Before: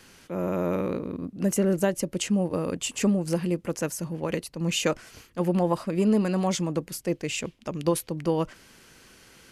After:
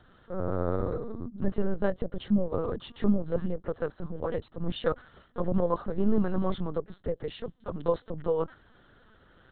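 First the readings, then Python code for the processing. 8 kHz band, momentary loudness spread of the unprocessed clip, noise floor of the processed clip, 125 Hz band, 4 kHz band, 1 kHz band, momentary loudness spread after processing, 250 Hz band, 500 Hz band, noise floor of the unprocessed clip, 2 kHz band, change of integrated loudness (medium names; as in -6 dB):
under -40 dB, 8 LU, -61 dBFS, -4.5 dB, -11.5 dB, -3.5 dB, 9 LU, -4.5 dB, -2.5 dB, -56 dBFS, -9.0 dB, -4.0 dB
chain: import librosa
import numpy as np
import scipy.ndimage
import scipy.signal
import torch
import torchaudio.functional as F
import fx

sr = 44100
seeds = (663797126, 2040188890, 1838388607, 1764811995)

y = fx.fixed_phaser(x, sr, hz=490.0, stages=8)
y = fx.lpc_vocoder(y, sr, seeds[0], excitation='pitch_kept', order=10)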